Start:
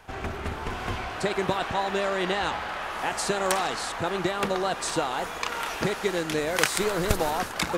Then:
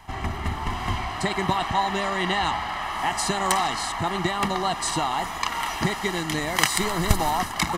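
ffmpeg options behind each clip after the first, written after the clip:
ffmpeg -i in.wav -af "aecho=1:1:1:0.74,volume=1.5dB" out.wav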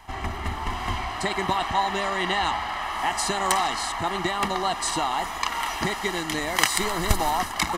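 ffmpeg -i in.wav -af "equalizer=frequency=140:width_type=o:width=1.1:gain=-7.5" out.wav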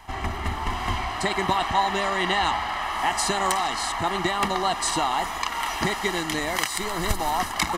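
ffmpeg -i in.wav -af "alimiter=limit=-9.5dB:level=0:latency=1:release=381,volume=1.5dB" out.wav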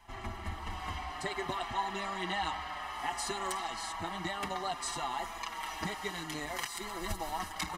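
ffmpeg -i in.wav -filter_complex "[0:a]asplit=2[link_01][link_02];[link_02]adelay=5.4,afreqshift=-0.59[link_03];[link_01][link_03]amix=inputs=2:normalize=1,volume=-9dB" out.wav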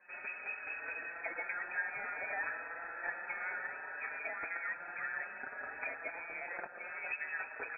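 ffmpeg -i in.wav -af "lowpass=frequency=2200:width_type=q:width=0.5098,lowpass=frequency=2200:width_type=q:width=0.6013,lowpass=frequency=2200:width_type=q:width=0.9,lowpass=frequency=2200:width_type=q:width=2.563,afreqshift=-2600,volume=-3.5dB" out.wav

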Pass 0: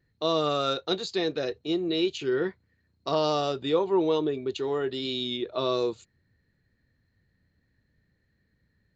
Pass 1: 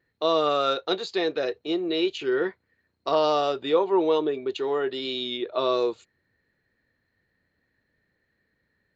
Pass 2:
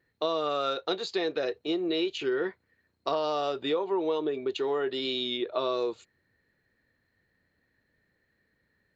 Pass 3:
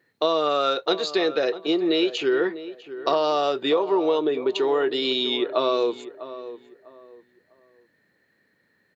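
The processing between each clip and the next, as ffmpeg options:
ffmpeg -i in.wav -af "bass=frequency=250:gain=-14,treble=frequency=4000:gain=-9,volume=4.5dB" out.wav
ffmpeg -i in.wav -af "acompressor=threshold=-25dB:ratio=6" out.wav
ffmpeg -i in.wav -filter_complex "[0:a]highpass=170,asplit=2[link_01][link_02];[link_02]adelay=649,lowpass=frequency=1700:poles=1,volume=-13.5dB,asplit=2[link_03][link_04];[link_04]adelay=649,lowpass=frequency=1700:poles=1,volume=0.28,asplit=2[link_05][link_06];[link_06]adelay=649,lowpass=frequency=1700:poles=1,volume=0.28[link_07];[link_01][link_03][link_05][link_07]amix=inputs=4:normalize=0,volume=7dB" out.wav

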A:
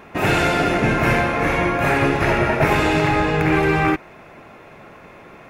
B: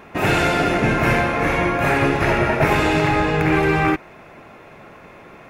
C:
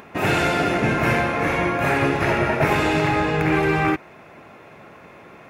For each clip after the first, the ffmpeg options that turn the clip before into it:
ffmpeg -i in.wav -af anull out.wav
ffmpeg -i in.wav -af "highpass=67,acompressor=mode=upward:threshold=-40dB:ratio=2.5,volume=-2dB" out.wav

